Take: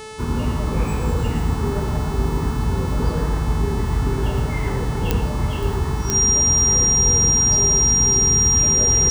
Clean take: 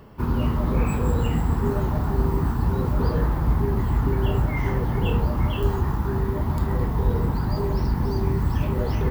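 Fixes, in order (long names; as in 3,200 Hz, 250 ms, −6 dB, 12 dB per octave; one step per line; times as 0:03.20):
click removal
hum removal 434.9 Hz, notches 24
notch filter 5,700 Hz, Q 30
echo removal 112 ms −7 dB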